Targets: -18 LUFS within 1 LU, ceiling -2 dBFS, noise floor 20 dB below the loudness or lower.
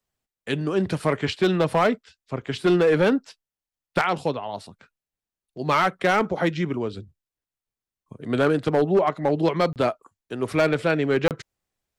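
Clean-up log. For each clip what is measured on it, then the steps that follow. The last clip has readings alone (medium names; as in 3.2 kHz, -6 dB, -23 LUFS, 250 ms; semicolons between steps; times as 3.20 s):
clipped samples 1.1%; clipping level -13.0 dBFS; dropouts 2; longest dropout 28 ms; loudness -23.0 LUFS; peak level -13.0 dBFS; loudness target -18.0 LUFS
-> clip repair -13 dBFS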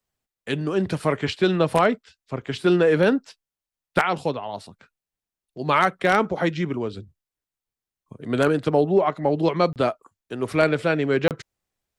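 clipped samples 0.0%; dropouts 2; longest dropout 28 ms
-> interpolate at 9.73/11.28 s, 28 ms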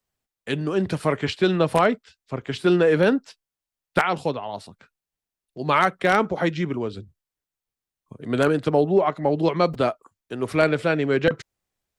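dropouts 0; loudness -22.5 LUFS; peak level -3.0 dBFS; loudness target -18.0 LUFS
-> trim +4.5 dB; peak limiter -2 dBFS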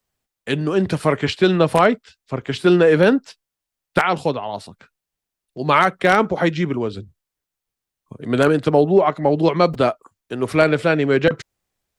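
loudness -18.0 LUFS; peak level -2.0 dBFS; noise floor -85 dBFS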